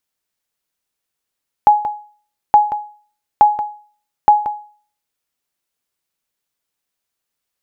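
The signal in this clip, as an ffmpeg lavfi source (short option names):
-f lavfi -i "aevalsrc='0.841*(sin(2*PI*837*mod(t,0.87))*exp(-6.91*mod(t,0.87)/0.44)+0.266*sin(2*PI*837*max(mod(t,0.87)-0.18,0))*exp(-6.91*max(mod(t,0.87)-0.18,0)/0.44))':d=3.48:s=44100"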